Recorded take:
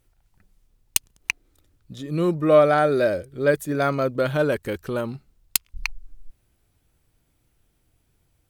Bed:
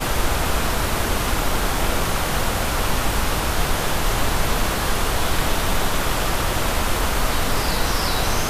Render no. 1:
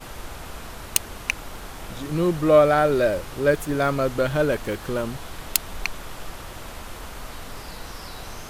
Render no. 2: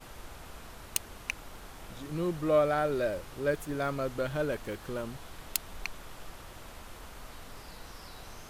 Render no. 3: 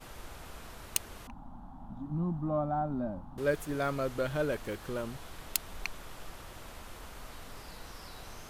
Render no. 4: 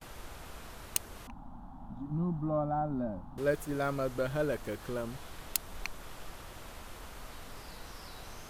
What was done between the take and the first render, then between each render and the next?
mix in bed −16 dB
level −10 dB
0:01.27–0:03.38: drawn EQ curve 120 Hz 0 dB, 250 Hz +9 dB, 440 Hz −22 dB, 810 Hz +4 dB, 1,500 Hz −15 dB, 2,200 Hz −29 dB, 3,500 Hz −23 dB, 5,000 Hz −29 dB
noise gate with hold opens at −44 dBFS; dynamic equaliser 2,800 Hz, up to −3 dB, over −47 dBFS, Q 0.74

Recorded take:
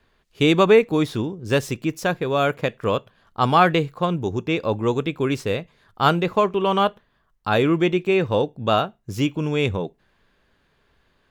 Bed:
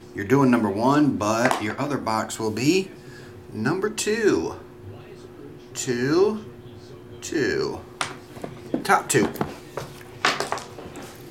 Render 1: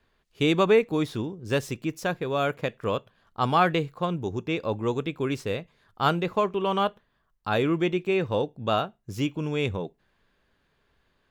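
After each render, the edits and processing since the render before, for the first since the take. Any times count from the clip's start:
level −5.5 dB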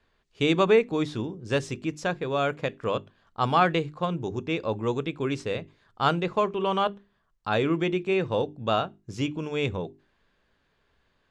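low-pass filter 8,500 Hz 24 dB per octave
mains-hum notches 50/100/150/200/250/300/350/400 Hz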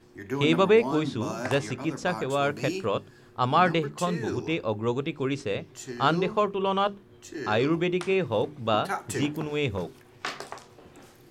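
mix in bed −12.5 dB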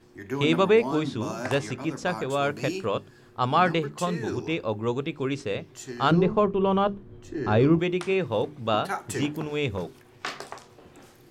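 0:06.11–0:07.79: spectral tilt −3 dB per octave

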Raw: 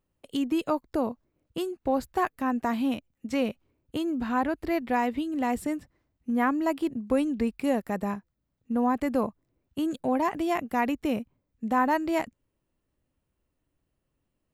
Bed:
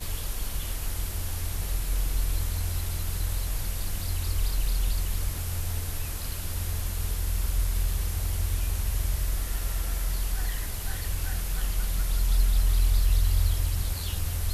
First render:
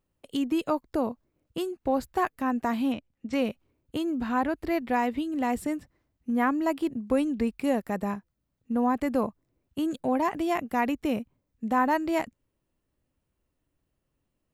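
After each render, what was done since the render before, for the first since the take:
0:02.92–0:03.33: high-frequency loss of the air 92 metres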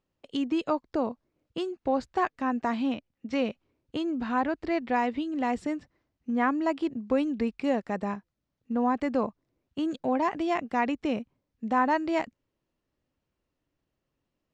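low-pass filter 6,300 Hz 24 dB per octave
low-shelf EQ 120 Hz −7.5 dB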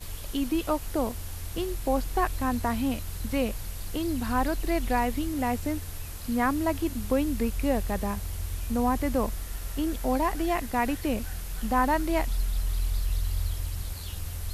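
mix in bed −5.5 dB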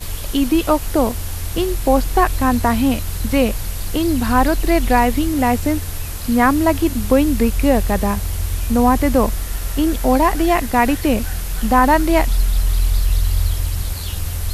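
level +11.5 dB
brickwall limiter −2 dBFS, peak gain reduction 1.5 dB

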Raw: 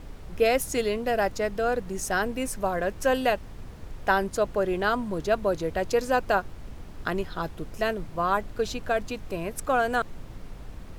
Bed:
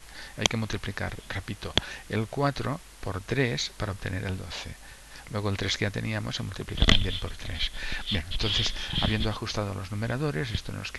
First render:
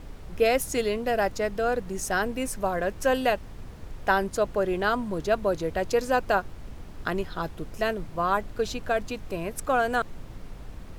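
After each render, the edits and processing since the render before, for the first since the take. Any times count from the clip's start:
no processing that can be heard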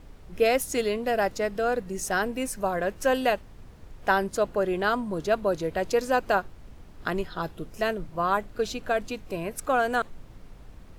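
noise reduction from a noise print 6 dB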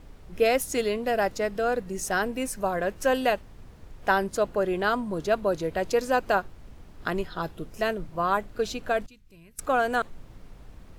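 0:09.06–0:09.59: guitar amp tone stack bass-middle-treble 6-0-2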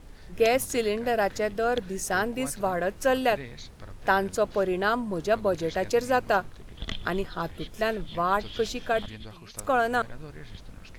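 mix in bed −15 dB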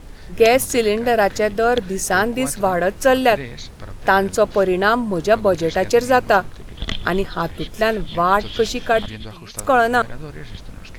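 level +9 dB
brickwall limiter −2 dBFS, peak gain reduction 2 dB

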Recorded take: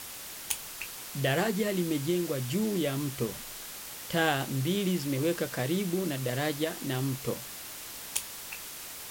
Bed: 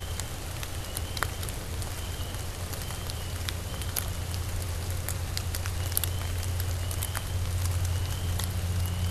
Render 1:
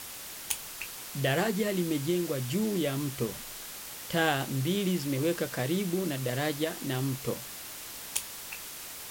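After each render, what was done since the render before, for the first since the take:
no processing that can be heard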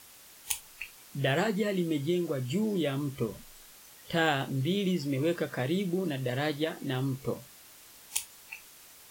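noise reduction from a noise print 11 dB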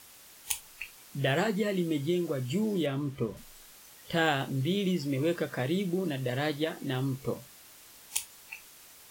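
0:02.86–0:03.37: high-shelf EQ 4,300 Hz −10 dB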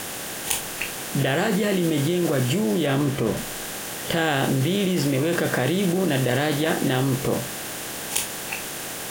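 compressor on every frequency bin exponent 0.6
in parallel at +2 dB: compressor whose output falls as the input rises −29 dBFS, ratio −0.5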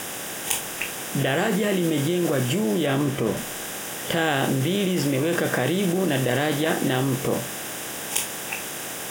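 low-shelf EQ 67 Hz −10 dB
notch filter 4,300 Hz, Q 6.1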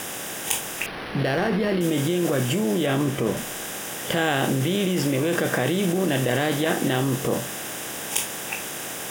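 0:00.86–0:01.81: linearly interpolated sample-rate reduction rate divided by 6×
0:07.04–0:07.47: notch filter 2,300 Hz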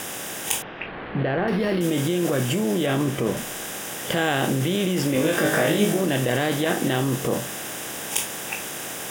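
0:00.62–0:01.48: Bessel low-pass filter 2,100 Hz, order 8
0:05.13–0:06.01: flutter between parallel walls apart 3.3 metres, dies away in 0.42 s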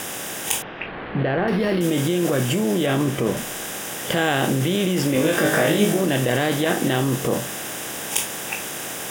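level +2 dB
brickwall limiter −2 dBFS, peak gain reduction 0.5 dB

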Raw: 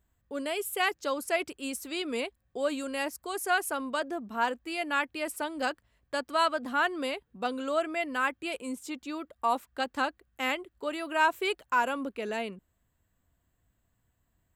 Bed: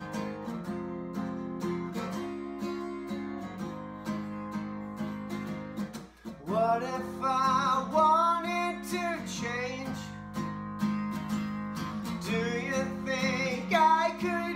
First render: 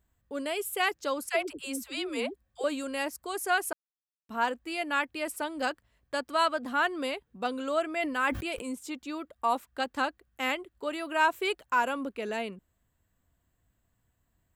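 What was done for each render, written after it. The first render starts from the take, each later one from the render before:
0:01.29–0:02.64: all-pass dispersion lows, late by 94 ms, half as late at 410 Hz
0:03.73–0:04.29: silence
0:07.92–0:08.67: level that may fall only so fast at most 56 dB per second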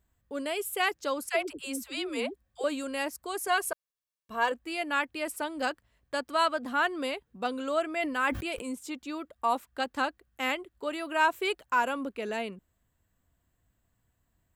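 0:03.47–0:04.52: comb filter 1.8 ms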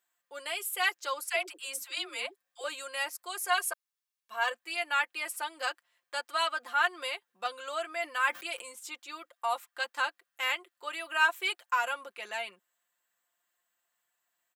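high-pass filter 970 Hz 12 dB per octave
comb filter 5.7 ms, depth 66%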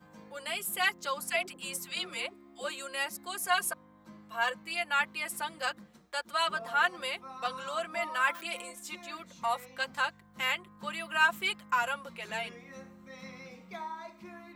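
mix in bed −17.5 dB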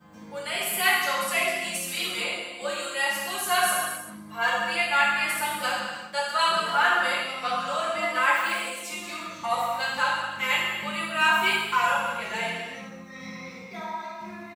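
slap from a distant wall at 36 metres, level −15 dB
reverb whose tail is shaped and stops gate 430 ms falling, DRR −7 dB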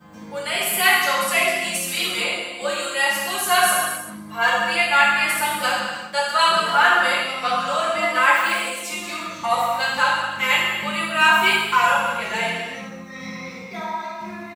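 level +6 dB
brickwall limiter −3 dBFS, peak gain reduction 1 dB

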